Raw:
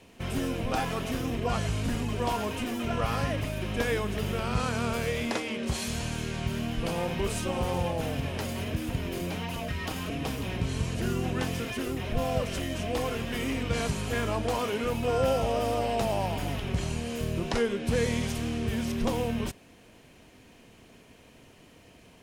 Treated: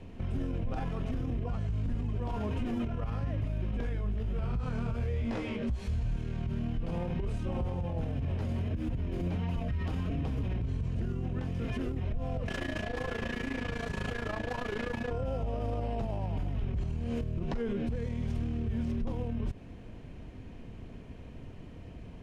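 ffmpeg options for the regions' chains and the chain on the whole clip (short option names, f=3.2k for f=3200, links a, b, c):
-filter_complex "[0:a]asettb=1/sr,asplit=3[a][b][c];[a]atrim=end=3.714[d];[b]atrim=start=3.71:end=6.16,asetpts=PTS-STARTPTS,afade=t=in:d=0.004:c=qsin,afade=t=out:st=2.446:d=0.004:c=qsin,flanger=delay=15:depth=5.5:speed=1.4,asubboost=boost=3.5:cutoff=98[e];[c]atrim=start=6.156[f];[d][e]acrossfade=d=0.004:c1=hsin:c2=qsin[g];[g][f]acrossfade=d=0.004:c1=qsin:c2=hsin,asettb=1/sr,asplit=3[h][i][j];[h]atrim=end=12.484[k];[i]atrim=start=12.48:end=15.11,asetpts=PTS-STARTPTS,afade=t=in:d=0.004:c=qsin,afade=t=out:st=2.626:d=0.004:c=qsin,asplit=2[l][m];[m]highpass=f=720:p=1,volume=35dB,asoftclip=type=tanh:threshold=-15.5dB[n];[l][n]amix=inputs=2:normalize=0,lowpass=f=7.3k:p=1,volume=-6dB,aeval=exprs='val(0)+0.0631*sin(2*PI*1700*n/s)':c=same,tremolo=f=28:d=0.889[o];[j]atrim=start=15.106[p];[k][o]acrossfade=d=0.004:c1=hsin:c2=qsin[q];[q][p]acrossfade=d=0.004:c1=qsin:c2=hsin,aemphasis=mode=reproduction:type=riaa,acompressor=threshold=-21dB:ratio=6,alimiter=level_in=1.5dB:limit=-24dB:level=0:latency=1:release=61,volume=-1.5dB"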